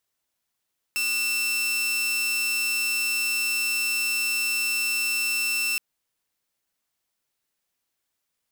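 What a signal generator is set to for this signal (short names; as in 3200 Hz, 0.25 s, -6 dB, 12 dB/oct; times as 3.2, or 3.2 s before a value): tone saw 2680 Hz -20.5 dBFS 4.82 s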